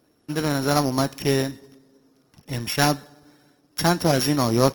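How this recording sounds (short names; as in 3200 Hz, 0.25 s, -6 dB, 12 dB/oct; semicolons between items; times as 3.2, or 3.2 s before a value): a buzz of ramps at a fixed pitch in blocks of 8 samples; Opus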